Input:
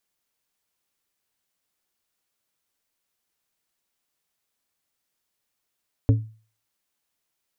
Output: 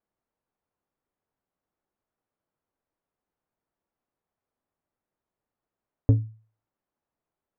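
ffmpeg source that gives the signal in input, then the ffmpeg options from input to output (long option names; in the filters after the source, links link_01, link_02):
-f lavfi -i "aevalsrc='0.282*pow(10,-3*t/0.39)*sin(2*PI*110*t)+0.126*pow(10,-3*t/0.205)*sin(2*PI*275*t)+0.0562*pow(10,-3*t/0.148)*sin(2*PI*440*t)+0.0251*pow(10,-3*t/0.126)*sin(2*PI*550*t)':duration=0.89:sample_rate=44100"
-filter_complex "[0:a]lowpass=1000,asplit=2[link_01][link_02];[link_02]asoftclip=type=tanh:threshold=-25dB,volume=-11dB[link_03];[link_01][link_03]amix=inputs=2:normalize=0"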